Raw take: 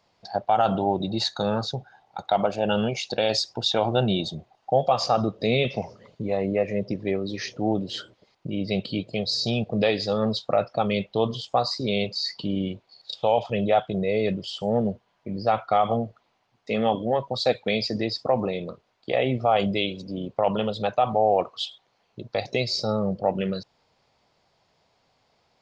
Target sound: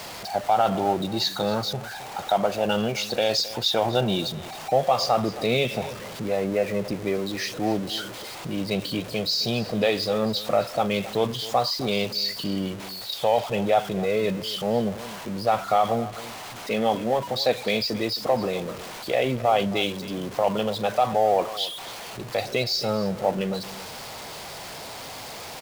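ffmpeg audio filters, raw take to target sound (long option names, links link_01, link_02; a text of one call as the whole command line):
ffmpeg -i in.wav -af "aeval=exprs='val(0)+0.5*0.0266*sgn(val(0))':channel_layout=same,lowshelf=frequency=230:gain=-5,aecho=1:1:267:0.15" out.wav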